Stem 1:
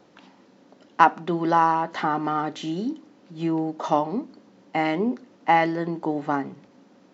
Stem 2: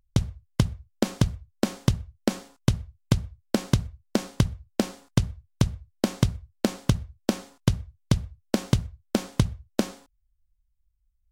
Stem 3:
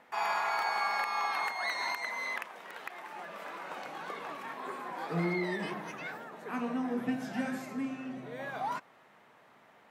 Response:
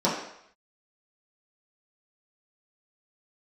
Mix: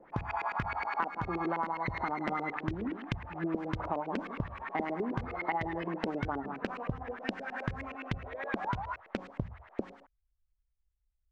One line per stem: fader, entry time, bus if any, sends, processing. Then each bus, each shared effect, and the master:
−7.0 dB, 0.00 s, no send, echo send −12.5 dB, adaptive Wiener filter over 15 samples
−8.5 dB, 0.00 s, no send, no echo send, no processing
0.0 dB, 0.00 s, no send, echo send −4 dB, high-pass filter 570 Hz 12 dB per octave; automatic ducking −13 dB, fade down 0.25 s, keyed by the first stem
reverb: not used
echo: single-tap delay 164 ms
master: high-shelf EQ 3,700 Hz +10 dB; auto-filter low-pass saw up 9.6 Hz 390–2,700 Hz; downward compressor 6 to 1, threshold −30 dBFS, peak gain reduction 17 dB

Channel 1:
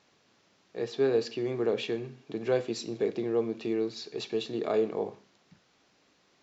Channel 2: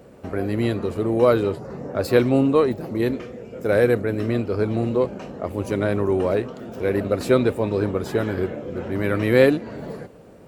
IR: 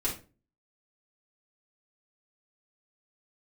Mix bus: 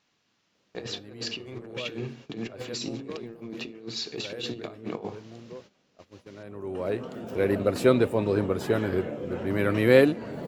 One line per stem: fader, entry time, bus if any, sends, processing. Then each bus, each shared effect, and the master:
+2.5 dB, 0.00 s, send −21 dB, parametric band 500 Hz −6 dB 1.5 octaves; compressor whose output falls as the input rises −40 dBFS, ratio −0.5
−2.5 dB, 0.55 s, no send, high-pass filter 81 Hz; automatic ducking −20 dB, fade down 1.10 s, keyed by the first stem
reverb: on, RT60 0.35 s, pre-delay 3 ms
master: noise gate −48 dBFS, range −14 dB; parametric band 2,900 Hz +2.5 dB 0.36 octaves

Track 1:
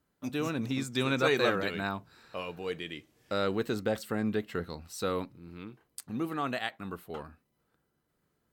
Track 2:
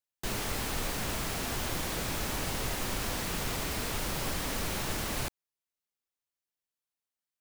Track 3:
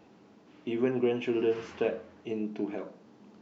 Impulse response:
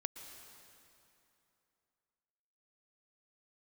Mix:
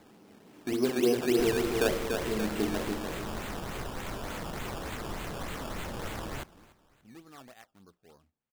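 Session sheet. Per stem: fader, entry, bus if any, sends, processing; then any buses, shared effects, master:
−17.5 dB, 0.95 s, no send, no echo send, low-pass that shuts in the quiet parts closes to 450 Hz, open at −25.5 dBFS; high-shelf EQ 4,200 Hz −12 dB
−4.0 dB, 1.15 s, no send, echo send −20.5 dB, no processing
+1.5 dB, 0.00 s, no send, echo send −4.5 dB, hum removal 64.61 Hz, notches 35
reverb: not used
echo: repeating echo 289 ms, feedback 41%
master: sample-and-hold swept by an LFO 15×, swing 100% 3.4 Hz

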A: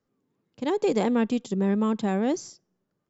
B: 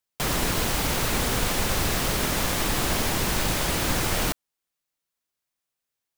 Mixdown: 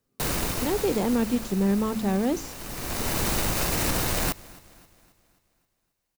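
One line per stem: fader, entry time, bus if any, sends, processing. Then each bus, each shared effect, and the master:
−1.5 dB, 0.00 s, no send, no echo send, low-shelf EQ 170 Hz +7.5 dB; hum removal 54.83 Hz, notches 6
+2.5 dB, 0.00 s, no send, echo send −24 dB, phase distortion by the signal itself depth 0.74 ms; notch filter 3,300 Hz, Q 14; automatic ducking −16 dB, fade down 1.60 s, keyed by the first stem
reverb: not used
echo: repeating echo 266 ms, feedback 49%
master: brickwall limiter −15 dBFS, peak gain reduction 5 dB

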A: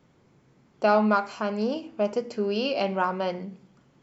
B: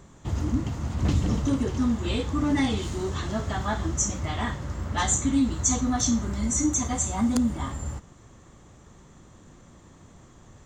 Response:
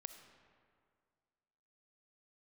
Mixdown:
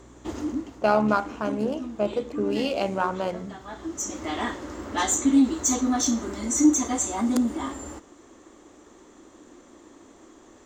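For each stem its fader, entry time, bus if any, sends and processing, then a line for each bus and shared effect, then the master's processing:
+2.0 dB, 0.00 s, no send, adaptive Wiener filter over 9 samples; amplitude modulation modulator 76 Hz, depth 30%; mains hum 60 Hz, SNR 26 dB
−5.5 dB, 0.00 s, no send, sine wavefolder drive 3 dB, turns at −10 dBFS; low shelf with overshoot 210 Hz −12.5 dB, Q 3; automatic ducking −13 dB, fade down 0.50 s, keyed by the first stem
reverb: not used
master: no processing

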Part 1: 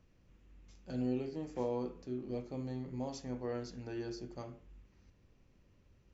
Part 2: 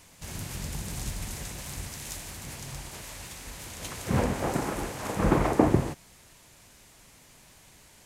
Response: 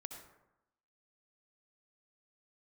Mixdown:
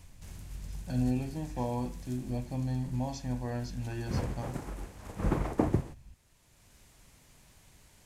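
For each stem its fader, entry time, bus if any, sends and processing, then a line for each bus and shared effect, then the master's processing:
+2.5 dB, 0.00 s, no send, comb filter 1.2 ms, depth 71%
+2.5 dB, 0.00 s, no send, expander for the loud parts 1.5 to 1, over −35 dBFS; automatic ducking −10 dB, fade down 0.45 s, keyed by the first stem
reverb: not used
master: low-shelf EQ 140 Hz +9.5 dB

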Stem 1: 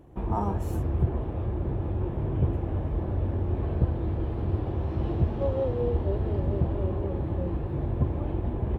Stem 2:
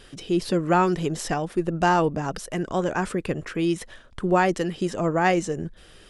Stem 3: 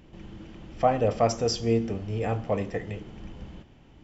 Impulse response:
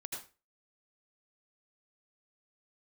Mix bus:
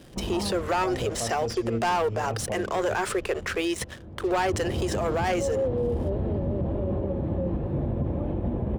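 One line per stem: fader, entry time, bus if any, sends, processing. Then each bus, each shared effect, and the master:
−1.5 dB, 0.00 s, no send, hollow resonant body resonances 210/530 Hz, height 9 dB, ringing for 20 ms; automatic ducking −18 dB, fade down 1.80 s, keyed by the third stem
−4.0 dB, 0.00 s, no send, elliptic high-pass filter 380 Hz; leveller curve on the samples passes 3
−8.5 dB, 0.00 s, no send, low-shelf EQ 470 Hz +7 dB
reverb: not used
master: brickwall limiter −19 dBFS, peak gain reduction 10.5 dB

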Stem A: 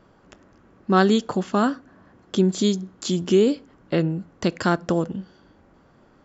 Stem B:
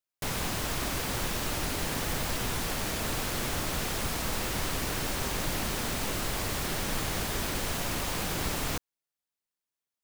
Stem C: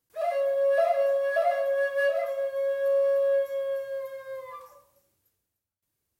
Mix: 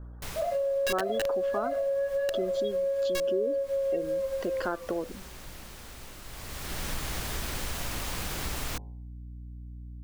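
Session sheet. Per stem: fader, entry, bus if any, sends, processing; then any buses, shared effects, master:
−2.5 dB, 0.00 s, no bus, no send, gate on every frequency bin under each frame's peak −20 dB strong; Chebyshev band-pass filter 400–3,700 Hz, order 2
−1.0 dB, 0.00 s, bus A, no send, low-shelf EQ 490 Hz −5.5 dB; hum removal 51.61 Hz, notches 20; mains hum 60 Hz, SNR 13 dB; automatic ducking −13 dB, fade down 0.70 s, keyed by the first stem
−3.0 dB, 0.20 s, bus A, no send, high-shelf EQ 3,200 Hz −6.5 dB; hollow resonant body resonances 510/4,000 Hz, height 13 dB, ringing for 20 ms; wrap-around overflow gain 8 dB
bus A: 0.0 dB, low-shelf EQ 110 Hz +9.5 dB; downward compressor, threshold −21 dBFS, peak gain reduction 9 dB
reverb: not used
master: downward compressor 2.5 to 1, threshold −29 dBFS, peak gain reduction 9.5 dB

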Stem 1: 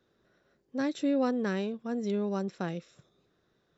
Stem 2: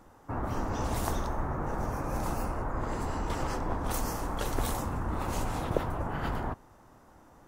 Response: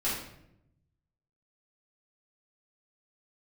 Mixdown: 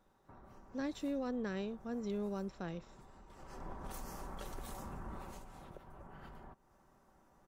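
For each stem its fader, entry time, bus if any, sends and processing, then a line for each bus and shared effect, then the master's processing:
−7.5 dB, 0.00 s, no send, brickwall limiter −23.5 dBFS, peak gain reduction 5.5 dB
0:03.30 −16.5 dB → 0:03.65 −4 dB → 0:05.15 −4 dB → 0:05.47 −11.5 dB, 0.00 s, no send, comb filter 5.2 ms, depth 43%; downward compressor 5 to 1, threshold −39 dBFS, peak gain reduction 16.5 dB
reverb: not used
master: no processing

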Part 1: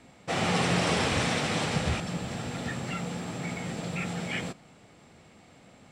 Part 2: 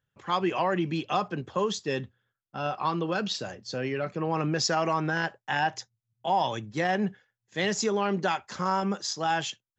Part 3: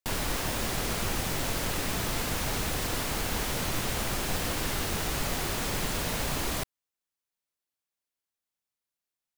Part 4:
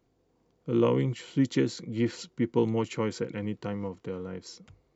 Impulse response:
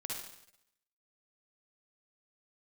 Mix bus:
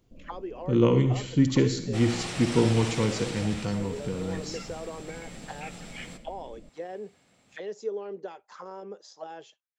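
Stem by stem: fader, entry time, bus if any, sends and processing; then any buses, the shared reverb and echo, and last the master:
−12.5 dB, 1.65 s, send −11.5 dB, no processing
−2.5 dB, 0.00 s, no send, envelope filter 450–2,900 Hz, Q 4.4, down, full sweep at −26.5 dBFS; high-shelf EQ 3,100 Hz +11.5 dB
−12.5 dB, 0.05 s, no send, Butterworth low-pass 580 Hz 72 dB per octave; phaser with its sweep stopped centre 410 Hz, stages 6
−4.0 dB, 0.00 s, send −5 dB, low-shelf EQ 220 Hz +11 dB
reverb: on, RT60 0.80 s, pre-delay 48 ms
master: high-shelf EQ 2,700 Hz +8.5 dB

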